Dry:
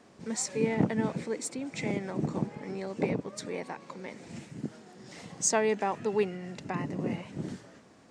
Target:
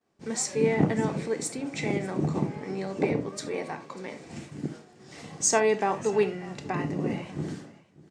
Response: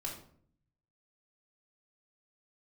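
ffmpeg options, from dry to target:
-filter_complex "[0:a]agate=range=0.0224:threshold=0.00631:ratio=3:detection=peak,aecho=1:1:592:0.0891,asplit=2[s0][s1];[1:a]atrim=start_sample=2205,afade=t=out:st=0.14:d=0.01,atrim=end_sample=6615[s2];[s1][s2]afir=irnorm=-1:irlink=0,volume=0.944[s3];[s0][s3]amix=inputs=2:normalize=0,volume=0.891"

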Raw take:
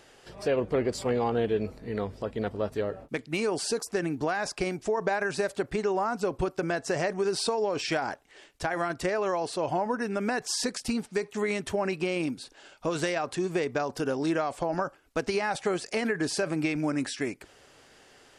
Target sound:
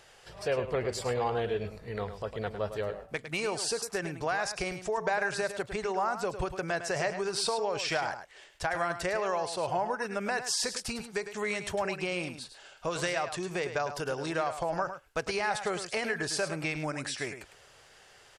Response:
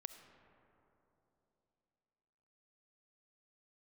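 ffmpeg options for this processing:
-filter_complex "[0:a]equalizer=f=270:t=o:w=0.99:g=-13,asplit=2[s0][s1];[s1]aecho=0:1:105:0.316[s2];[s0][s2]amix=inputs=2:normalize=0"

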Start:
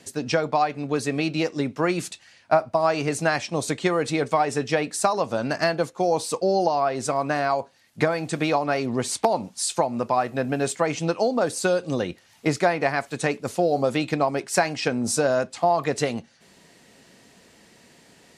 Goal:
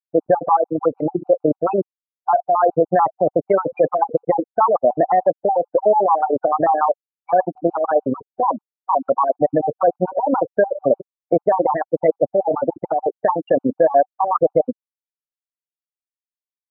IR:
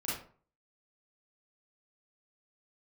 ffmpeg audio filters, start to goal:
-filter_complex "[0:a]equalizer=f=125:t=o:w=1:g=4,equalizer=f=250:t=o:w=1:g=5,equalizer=f=500:t=o:w=1:g=12,equalizer=f=1000:t=o:w=1:g=9,equalizer=f=4000:t=o:w=1:g=-5,asplit=2[s0][s1];[s1]aeval=exprs='sgn(val(0))*max(abs(val(0))-0.0266,0)':c=same,volume=0.422[s2];[s0][s2]amix=inputs=2:normalize=0,tremolo=f=30:d=0.4,asetrate=48510,aresample=44100,afftfilt=real='re*gte(hypot(re,im),0.355)':imag='im*gte(hypot(re,im),0.355)':win_size=1024:overlap=0.75,equalizer=f=940:w=0.93:g=9.5,alimiter=level_in=1.33:limit=0.891:release=50:level=0:latency=1,afftfilt=real='re*gt(sin(2*PI*6.8*pts/sr)*(1-2*mod(floor(b*sr/1024/750),2)),0)':imag='im*gt(sin(2*PI*6.8*pts/sr)*(1-2*mod(floor(b*sr/1024/750),2)),0)':win_size=1024:overlap=0.75,volume=0.631"

